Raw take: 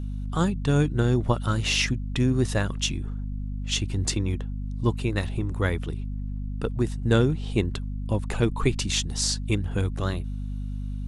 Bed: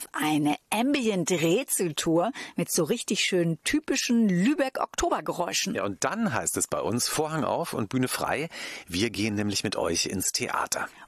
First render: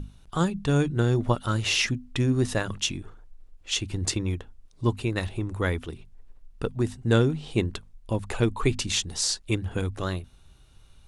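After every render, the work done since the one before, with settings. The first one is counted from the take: hum notches 50/100/150/200/250 Hz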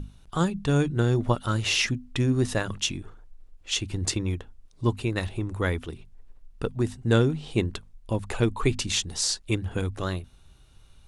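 no audible change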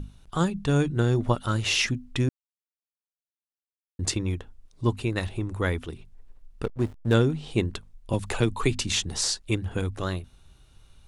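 2.29–3.99 s: mute; 6.63–7.14 s: hysteresis with a dead band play -28 dBFS; 8.13–9.30 s: three bands compressed up and down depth 40%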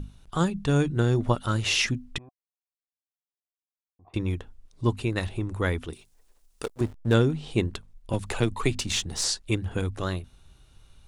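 2.18–4.14 s: cascade formant filter a; 5.93–6.81 s: tone controls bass -14 dB, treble +14 dB; 7.67–9.25 s: partial rectifier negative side -3 dB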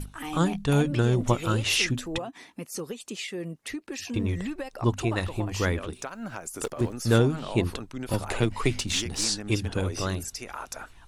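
add bed -10 dB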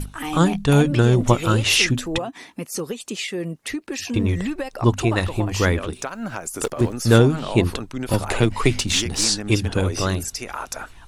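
trim +7 dB; peak limiter -1 dBFS, peak gain reduction 1 dB

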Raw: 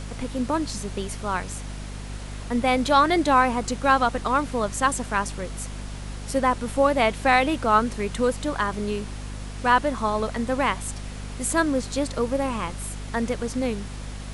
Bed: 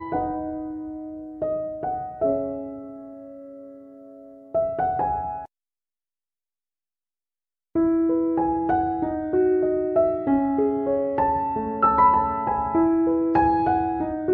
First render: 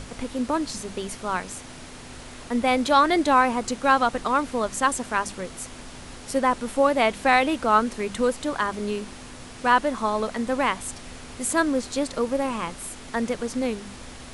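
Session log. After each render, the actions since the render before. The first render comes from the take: hum notches 50/100/150/200 Hz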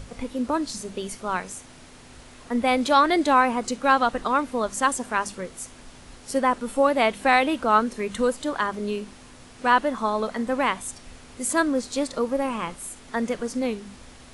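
noise print and reduce 6 dB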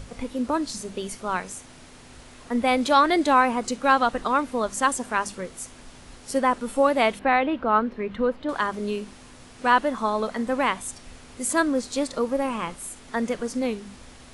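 7.19–8.49 s: distance through air 360 m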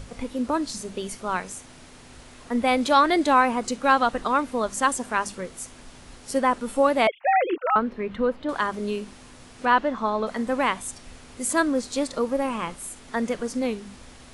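7.07–7.76 s: formants replaced by sine waves; 9.65–10.27 s: distance through air 110 m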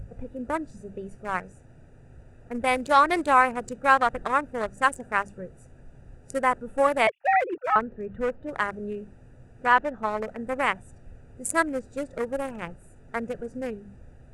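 local Wiener filter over 41 samples; graphic EQ 125/250/2000/4000/8000 Hz +6/-9/+5/-8/+8 dB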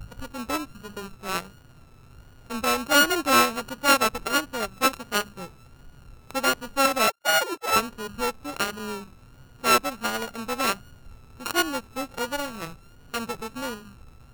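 sorted samples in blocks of 32 samples; vibrato 1.4 Hz 78 cents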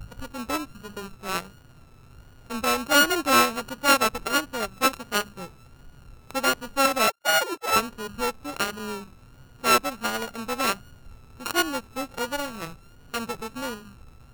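no audible change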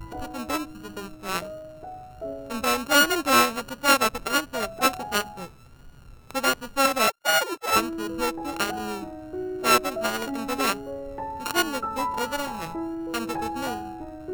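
add bed -12 dB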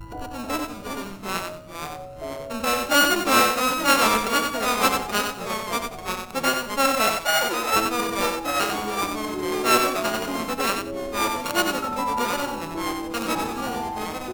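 ever faster or slower copies 305 ms, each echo -2 st, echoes 2, each echo -6 dB; on a send: feedback delay 92 ms, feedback 21%, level -5.5 dB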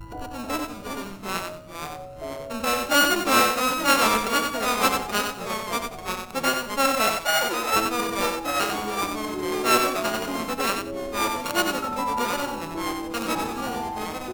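trim -1 dB

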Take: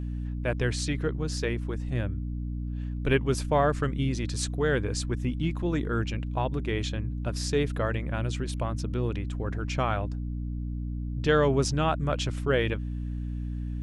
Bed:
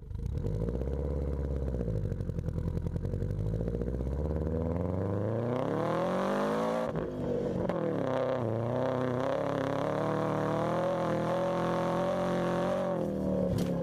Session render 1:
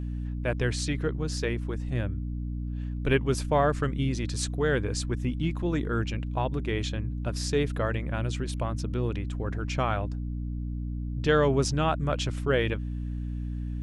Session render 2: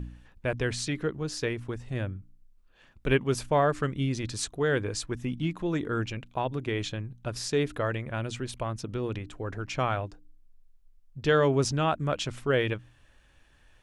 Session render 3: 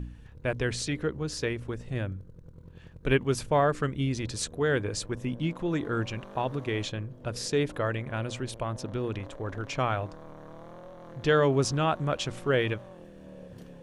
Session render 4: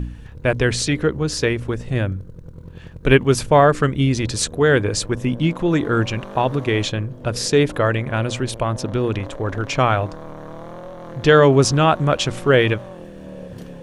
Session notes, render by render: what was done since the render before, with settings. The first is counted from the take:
no audible change
de-hum 60 Hz, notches 5
add bed -16.5 dB
trim +11 dB; peak limiter -1 dBFS, peak gain reduction 1 dB

